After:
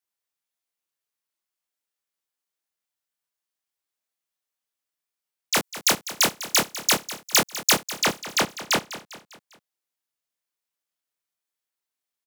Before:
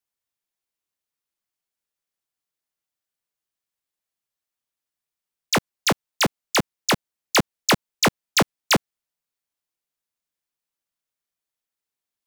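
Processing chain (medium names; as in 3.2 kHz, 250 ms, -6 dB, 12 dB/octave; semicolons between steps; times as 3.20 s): bass shelf 220 Hz -9.5 dB; compression 1.5:1, threshold -23 dBFS, peak gain reduction 3 dB; 5.54–7.74 s: treble shelf 5.7 kHz +11.5 dB; doubling 26 ms -2.5 dB; feedback delay 200 ms, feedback 48%, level -14.5 dB; trim -2 dB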